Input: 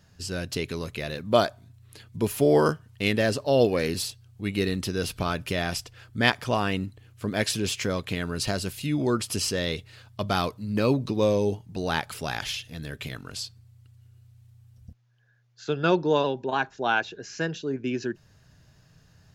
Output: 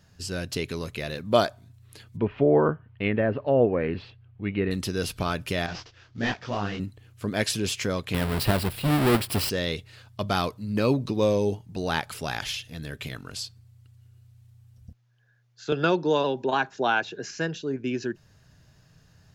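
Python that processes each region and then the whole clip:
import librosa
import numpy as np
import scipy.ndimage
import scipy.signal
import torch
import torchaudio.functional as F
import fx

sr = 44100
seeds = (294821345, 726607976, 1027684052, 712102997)

y = fx.chain(x, sr, fx.lowpass(hz=2700.0, slope=24),
    fx.env_lowpass_down(base_hz=1400.0, full_db=-18.5), at=(2.17, 4.71))
y = fx.chain(y, sr, fx.cvsd(bps=32000),
    fx.detune_double(cents=53), at=(5.66, 6.8))
y = fx.chain(y, sr, fx.halfwave_hold(),
    fx.peak_eq(hz=6400.0, db=-15.0, octaves=0.44), at=(8.14, 9.5))
y = fx.chain(y, sr, fx.highpass(hz=130.0, slope=12),
    fx.band_squash(depth_pct=70), at=(15.72, 17.31))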